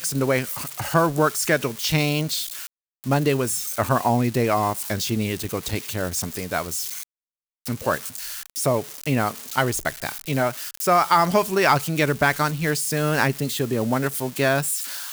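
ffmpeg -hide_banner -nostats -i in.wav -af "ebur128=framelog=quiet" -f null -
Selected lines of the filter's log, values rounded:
Integrated loudness:
  I:         -22.7 LUFS
  Threshold: -32.9 LUFS
Loudness range:
  LRA:         6.6 LU
  Threshold: -43.1 LUFS
  LRA low:   -27.1 LUFS
  LRA high:  -20.5 LUFS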